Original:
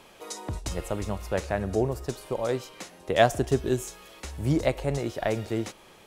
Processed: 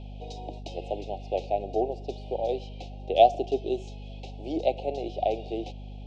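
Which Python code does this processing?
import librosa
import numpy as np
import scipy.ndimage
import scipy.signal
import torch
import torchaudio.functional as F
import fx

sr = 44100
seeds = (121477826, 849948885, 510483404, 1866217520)

y = scipy.signal.sosfilt(scipy.signal.ellip(3, 1.0, 40, [770.0, 2500.0], 'bandstop', fs=sr, output='sos'), x)
y = fx.cabinet(y, sr, low_hz=330.0, low_slope=24, high_hz=4200.0, hz=(770.0, 1300.0, 2200.0), db=(8, -6, -5))
y = fx.add_hum(y, sr, base_hz=50, snr_db=11)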